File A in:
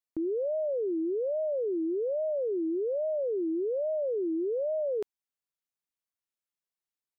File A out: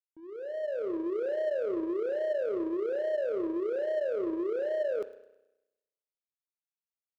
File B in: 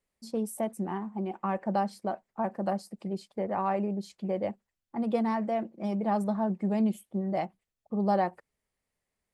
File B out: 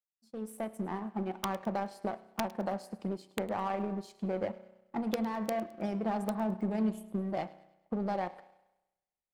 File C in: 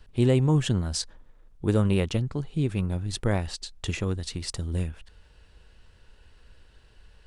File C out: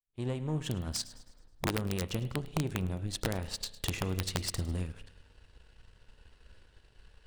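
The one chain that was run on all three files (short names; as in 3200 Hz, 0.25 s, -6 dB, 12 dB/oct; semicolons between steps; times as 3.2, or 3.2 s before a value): opening faded in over 1.31 s; in parallel at -2.5 dB: limiter -22 dBFS; on the sum: compressor 4:1, threshold -29 dBFS; spring tank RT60 1.3 s, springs 32 ms, chirp 40 ms, DRR 10 dB; wrapped overs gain 20.5 dB; power-law curve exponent 1.4; on a send: thin delay 0.106 s, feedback 45%, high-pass 2600 Hz, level -17 dB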